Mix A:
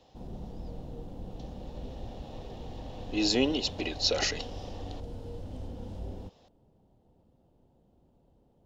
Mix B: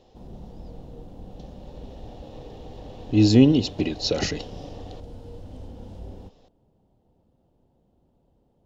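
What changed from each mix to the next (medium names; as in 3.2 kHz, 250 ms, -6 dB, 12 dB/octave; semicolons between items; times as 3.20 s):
speech: remove high-pass 580 Hz 12 dB/octave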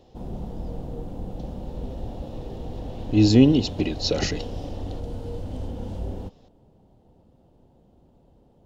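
background +8.0 dB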